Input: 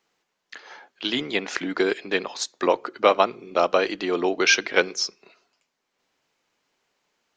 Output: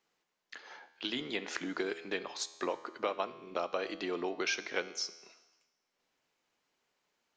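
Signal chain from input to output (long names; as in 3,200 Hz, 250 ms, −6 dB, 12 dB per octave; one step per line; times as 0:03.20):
downward compressor 2.5 to 1, threshold −27 dBFS, peak gain reduction 11 dB
tuned comb filter 82 Hz, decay 1.2 s, harmonics all, mix 60%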